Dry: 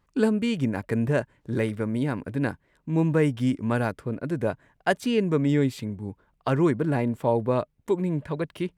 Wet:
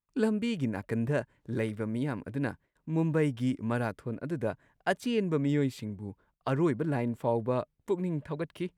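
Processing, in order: gate with hold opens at -54 dBFS; trim -5.5 dB

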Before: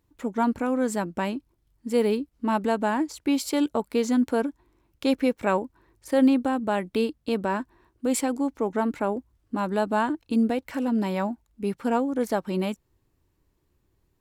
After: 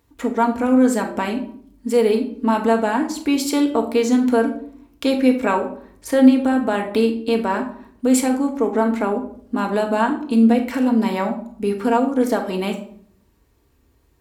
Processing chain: high-pass 43 Hz; peaking EQ 170 Hz -12 dB 0.49 oct; in parallel at +2.5 dB: compression, threshold -35 dBFS, peak gain reduction 17 dB; on the sum: simulated room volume 890 m³, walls furnished, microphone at 1.7 m; trim +2 dB

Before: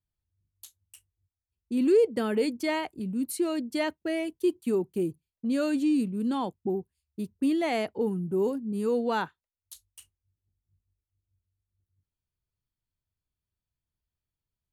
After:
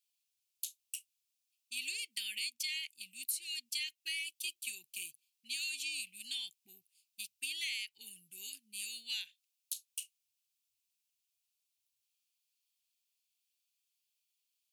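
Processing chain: elliptic high-pass 2.5 kHz, stop band 50 dB; compression 5:1, threshold -48 dBFS, peak gain reduction 13.5 dB; trim +12 dB

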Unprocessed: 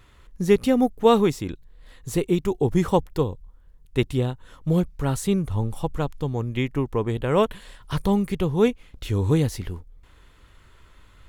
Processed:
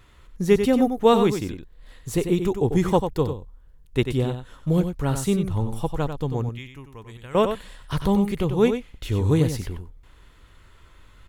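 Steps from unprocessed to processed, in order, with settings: 6.49–7.35 s: amplifier tone stack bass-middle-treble 5-5-5; delay 94 ms -8 dB

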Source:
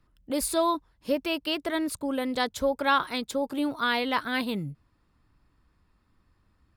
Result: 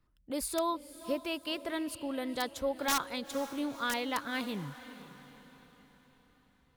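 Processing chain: integer overflow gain 14.5 dB; echo that smears into a reverb 489 ms, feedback 47%, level -14.5 dB; trim -7 dB

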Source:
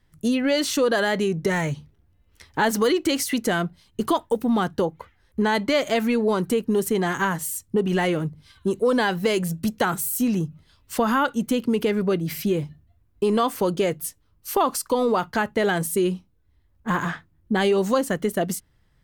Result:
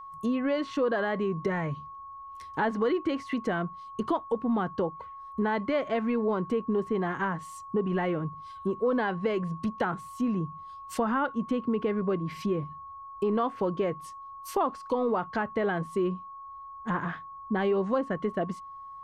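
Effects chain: low-pass that closes with the level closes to 1.9 kHz, closed at -20.5 dBFS; whistle 1.1 kHz -35 dBFS; trim -6 dB

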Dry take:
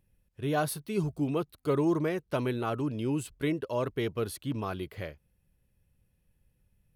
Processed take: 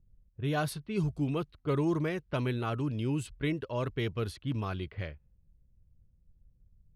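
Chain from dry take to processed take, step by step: RIAA curve playback; level-controlled noise filter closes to 490 Hz, open at -20.5 dBFS; tilt shelf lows -9 dB, about 1.4 kHz

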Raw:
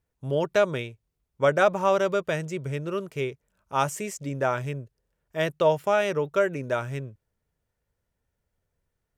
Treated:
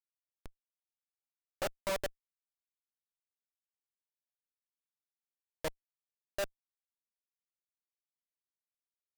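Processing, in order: simulated room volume 41 m³, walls mixed, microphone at 0.64 m; level held to a coarse grid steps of 16 dB; Schmitt trigger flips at -21 dBFS; tone controls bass -6 dB, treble +1 dB; trim -2 dB

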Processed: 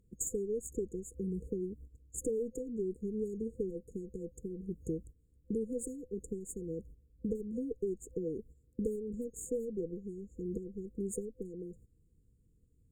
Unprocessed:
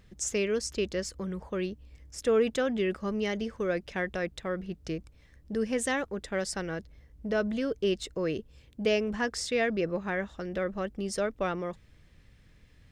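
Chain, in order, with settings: dynamic bell 670 Hz, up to +6 dB, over -42 dBFS, Q 1.7; gate -47 dBFS, range -15 dB; Chebyshev shaper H 2 -9 dB, 7 -29 dB, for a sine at -17 dBFS; compression 5:1, threshold -41 dBFS, peak gain reduction 20.5 dB; FFT band-reject 510–6600 Hz; trim +7.5 dB

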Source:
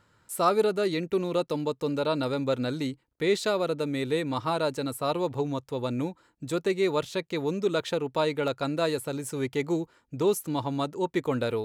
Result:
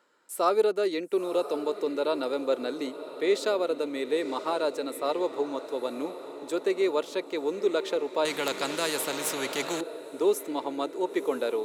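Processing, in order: high-pass 280 Hz 24 dB/octave; peaking EQ 460 Hz +3.5 dB 1.3 oct; on a send: echo that smears into a reverb 1005 ms, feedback 55%, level -13 dB; 8.25–9.81 s: on the sum: spectrum-flattening compressor 2:1; trim -2.5 dB

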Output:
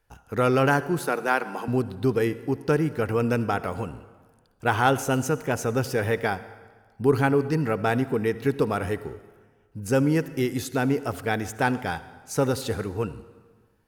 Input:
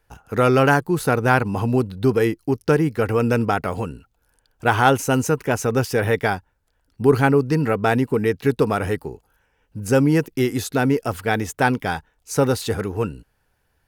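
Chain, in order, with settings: 0.99–1.68 s: Bessel high-pass 350 Hz, order 6; on a send: reverberation RT60 1.5 s, pre-delay 53 ms, DRR 15 dB; on the sum: trim -5 dB

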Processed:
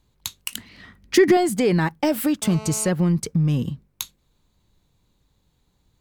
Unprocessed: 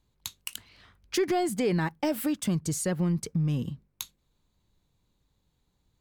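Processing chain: 0.52–1.37 s: small resonant body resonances 220/1900 Hz, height 12 dB, ringing for 25 ms; 2.42–2.89 s: mobile phone buzz -44 dBFS; trim +7 dB

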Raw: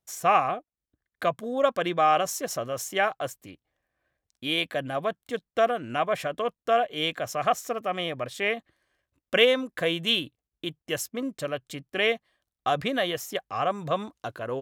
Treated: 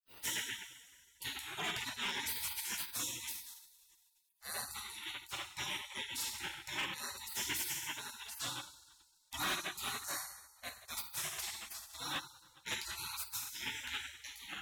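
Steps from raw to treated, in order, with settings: two-slope reverb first 0.82 s, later 2.6 s, DRR -1 dB; spectral gate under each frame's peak -30 dB weak; hard clipper -38 dBFS, distortion -13 dB; trim +5.5 dB

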